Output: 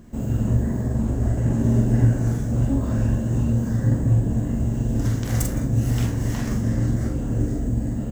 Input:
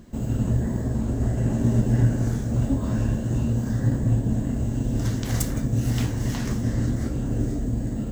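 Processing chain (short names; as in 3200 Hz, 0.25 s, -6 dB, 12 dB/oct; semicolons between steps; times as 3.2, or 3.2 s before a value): bell 4000 Hz -5 dB 0.97 oct; doubler 44 ms -4 dB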